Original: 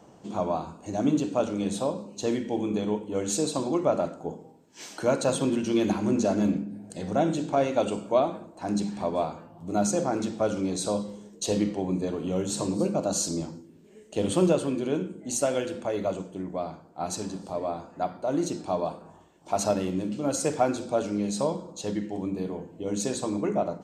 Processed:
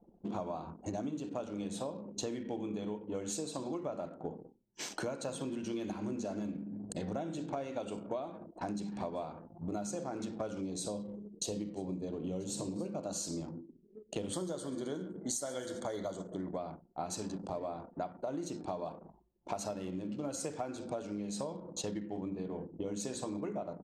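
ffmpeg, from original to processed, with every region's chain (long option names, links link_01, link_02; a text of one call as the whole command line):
ffmpeg -i in.wav -filter_complex "[0:a]asettb=1/sr,asplit=3[link_01][link_02][link_03];[link_01]atrim=end=10.614[link_04];[link_02]atrim=start=10.61:end=12.76,asetpts=PTS-STARTPTS,afade=type=in:duration=0.004:curve=qsin,afade=type=out:start_time=2.146:duration=0.004:curve=qsin,equalizer=frequency=1500:width=0.83:gain=-8.5,aecho=1:1:984:0.112,atrim=end_sample=94815[link_05];[link_03]atrim=start=12.756[link_06];[link_04][link_05]acrossfade=duration=0.004:curve1=hsin:curve2=qsin[link_07];[link_07][link_06]acrossfade=duration=0.004:curve1=qsin:curve2=hsin,asettb=1/sr,asplit=3[link_08][link_09][link_10];[link_08]atrim=end=14.334[link_11];[link_09]atrim=start=14.33:end=16.58,asetpts=PTS-STARTPTS,afade=type=in:duration=0.004:curve=qsin,afade=type=out:start_time=2.246:duration=0.004:curve=qsin,asuperstop=centerf=2600:order=4:qfactor=2.4,highshelf=frequency=2000:gain=9,aecho=1:1:133|266|399|532:0.112|0.0572|0.0292|0.0149,atrim=end_sample=99225[link_12];[link_10]atrim=start=16.576[link_13];[link_11][link_12]acrossfade=duration=0.004:curve1=hsin:curve2=qsin[link_14];[link_14][link_13]acrossfade=duration=0.004:curve1=qsin:curve2=hsin,anlmdn=0.1,acompressor=threshold=-37dB:ratio=12,volume=2dB" out.wav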